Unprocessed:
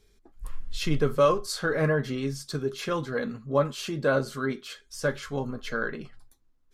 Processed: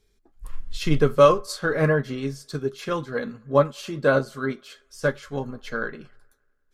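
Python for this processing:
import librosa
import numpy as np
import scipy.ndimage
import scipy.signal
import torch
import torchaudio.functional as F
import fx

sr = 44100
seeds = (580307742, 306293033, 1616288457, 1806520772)

p1 = x + fx.echo_wet_bandpass(x, sr, ms=94, feedback_pct=67, hz=1000.0, wet_db=-23.5, dry=0)
p2 = fx.upward_expand(p1, sr, threshold_db=-39.0, expansion=1.5)
y = p2 * 10.0 ** (7.0 / 20.0)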